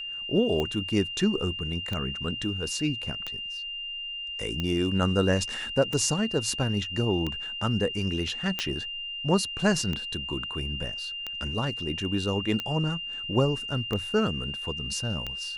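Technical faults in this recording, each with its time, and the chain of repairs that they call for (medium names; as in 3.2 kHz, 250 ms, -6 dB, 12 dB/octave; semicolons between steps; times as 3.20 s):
tick 45 rpm -17 dBFS
whine 2.8 kHz -33 dBFS
8.59 s: pop -12 dBFS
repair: de-click; band-stop 2.8 kHz, Q 30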